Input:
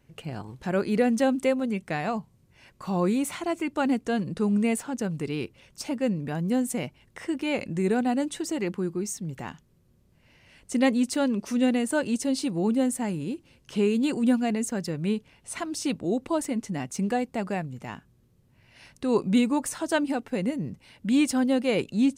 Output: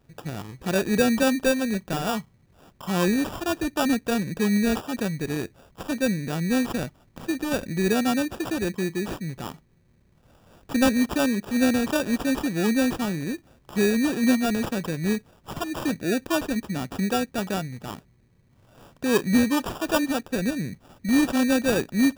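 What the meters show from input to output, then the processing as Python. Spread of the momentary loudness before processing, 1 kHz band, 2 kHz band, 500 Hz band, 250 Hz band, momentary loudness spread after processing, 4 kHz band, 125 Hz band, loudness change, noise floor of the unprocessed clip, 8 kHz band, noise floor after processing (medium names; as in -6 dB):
12 LU, +2.0 dB, +5.5 dB, +1.5 dB, +2.0 dB, 12 LU, +5.5 dB, +2.5 dB, +2.0 dB, -62 dBFS, +2.0 dB, -60 dBFS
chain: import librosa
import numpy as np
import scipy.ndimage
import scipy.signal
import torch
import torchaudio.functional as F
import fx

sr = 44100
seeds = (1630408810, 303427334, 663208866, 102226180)

y = fx.sample_hold(x, sr, seeds[0], rate_hz=2100.0, jitter_pct=0)
y = y * librosa.db_to_amplitude(2.0)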